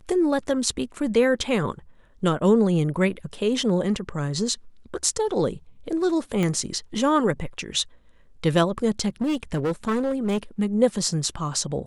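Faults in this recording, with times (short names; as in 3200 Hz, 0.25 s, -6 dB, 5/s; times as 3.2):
6.43 pop -13 dBFS
9.21–10.38 clipped -20 dBFS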